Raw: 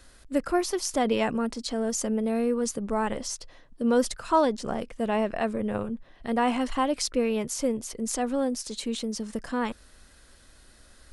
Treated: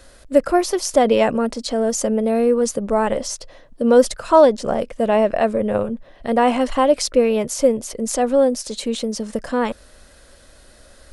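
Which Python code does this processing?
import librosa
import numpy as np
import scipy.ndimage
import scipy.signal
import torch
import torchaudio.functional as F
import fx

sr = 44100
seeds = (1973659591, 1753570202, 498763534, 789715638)

y = fx.peak_eq(x, sr, hz=570.0, db=9.0, octaves=0.57)
y = y * librosa.db_to_amplitude(6.0)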